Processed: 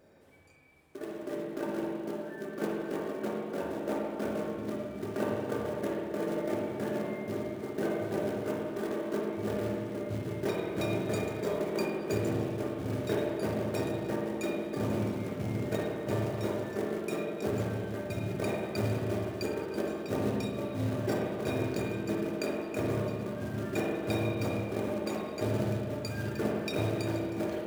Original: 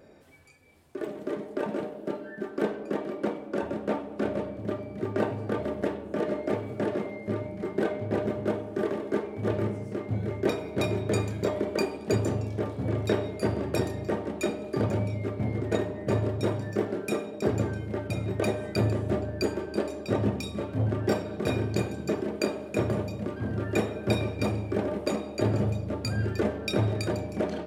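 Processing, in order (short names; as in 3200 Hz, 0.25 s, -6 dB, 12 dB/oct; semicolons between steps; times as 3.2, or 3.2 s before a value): notches 60/120/180/240/300/360/420/480/540 Hz; short-mantissa float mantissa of 2-bit; spring tank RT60 1.9 s, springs 42/54 ms, chirp 70 ms, DRR -1 dB; gain -6.5 dB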